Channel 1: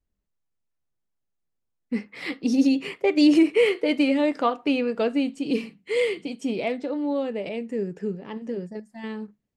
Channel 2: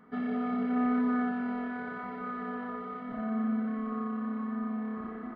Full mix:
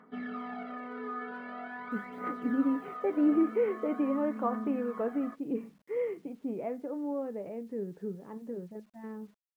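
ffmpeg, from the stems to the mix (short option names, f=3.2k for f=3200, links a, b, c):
-filter_complex "[0:a]lowpass=f=1.5k:w=0.5412,lowpass=f=1.5k:w=1.3066,acrusher=bits=9:mix=0:aa=0.000001,volume=-8.5dB[a];[1:a]highpass=f=480:p=1,alimiter=level_in=5dB:limit=-24dB:level=0:latency=1:release=86,volume=-5dB,aphaser=in_gain=1:out_gain=1:delay=2.5:decay=0.61:speed=0.44:type=triangular,volume=-2.5dB[b];[a][b]amix=inputs=2:normalize=0"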